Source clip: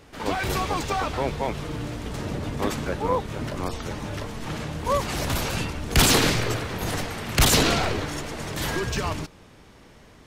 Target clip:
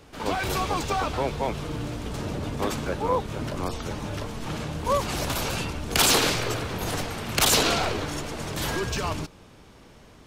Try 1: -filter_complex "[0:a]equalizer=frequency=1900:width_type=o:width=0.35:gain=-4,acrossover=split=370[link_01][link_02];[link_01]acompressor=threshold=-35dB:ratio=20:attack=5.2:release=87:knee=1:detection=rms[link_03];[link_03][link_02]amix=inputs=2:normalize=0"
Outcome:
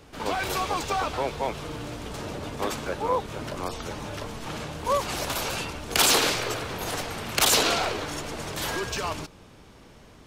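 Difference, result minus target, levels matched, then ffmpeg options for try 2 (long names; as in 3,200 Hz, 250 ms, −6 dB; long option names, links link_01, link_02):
downward compressor: peak gain reduction +7 dB
-filter_complex "[0:a]equalizer=frequency=1900:width_type=o:width=0.35:gain=-4,acrossover=split=370[link_01][link_02];[link_01]acompressor=threshold=-27.5dB:ratio=20:attack=5.2:release=87:knee=1:detection=rms[link_03];[link_03][link_02]amix=inputs=2:normalize=0"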